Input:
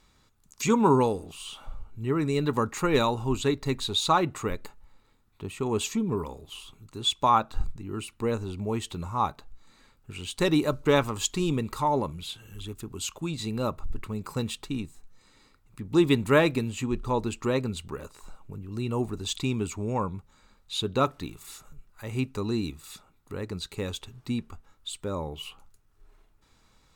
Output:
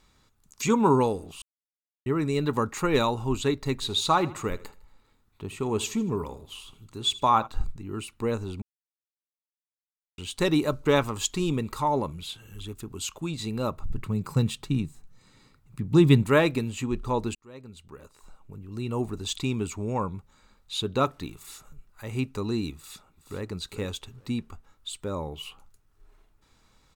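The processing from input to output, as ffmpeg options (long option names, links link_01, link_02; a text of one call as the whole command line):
ffmpeg -i in.wav -filter_complex "[0:a]asplit=3[link_01][link_02][link_03];[link_01]afade=type=out:start_time=3.8:duration=0.02[link_04];[link_02]aecho=1:1:78|156|234:0.126|0.0478|0.0182,afade=type=in:start_time=3.8:duration=0.02,afade=type=out:start_time=7.46:duration=0.02[link_05];[link_03]afade=type=in:start_time=7.46:duration=0.02[link_06];[link_04][link_05][link_06]amix=inputs=3:normalize=0,asettb=1/sr,asplit=3[link_07][link_08][link_09];[link_07]atrim=end=13.814[link_10];[link_08]atrim=start=13.81:end=16.23,asetpts=PTS-STARTPTS,afade=type=in:duration=0.004:curve=qsin,afade=type=out:start_time=2.416:duration=0.004:curve=qsin,equalizer=frequency=140:width=1.3:gain=11[link_11];[link_09]atrim=start=16.226[link_12];[link_10][link_11]acrossfade=duration=0.004:curve1=hsin:curve2=qsin[link_13];[link_13][link_12]acrossfade=duration=0.004:curve1=qsin:curve2=hsin,asplit=2[link_14][link_15];[link_15]afade=type=in:start_time=22.75:duration=0.01,afade=type=out:start_time=23.43:duration=0.01,aecho=0:1:420|840:0.316228|0.0474342[link_16];[link_14][link_16]amix=inputs=2:normalize=0,asplit=6[link_17][link_18][link_19][link_20][link_21][link_22];[link_17]atrim=end=1.42,asetpts=PTS-STARTPTS,afade=type=out:start_time=1.416:duration=0.004:curve=hsin[link_23];[link_18]atrim=start=1.42:end=2.06,asetpts=PTS-STARTPTS,volume=0[link_24];[link_19]atrim=start=2.06:end=8.62,asetpts=PTS-STARTPTS,afade=type=in:duration=0.004:curve=hsin,afade=type=out:start_time=6.556:duration=0.004:curve=hsin[link_25];[link_20]atrim=start=8.62:end=10.18,asetpts=PTS-STARTPTS,volume=0[link_26];[link_21]atrim=start=10.18:end=17.35,asetpts=PTS-STARTPTS,afade=type=in:duration=0.004:curve=hsin,afade=type=out:start_time=7.166:duration=0.004:curve=hsin[link_27];[link_22]atrim=start=17.35,asetpts=PTS-STARTPTS,afade=type=in:duration=1.73[link_28];[link_23][link_24][link_25][link_26][link_27][link_28]concat=n=6:v=0:a=1" out.wav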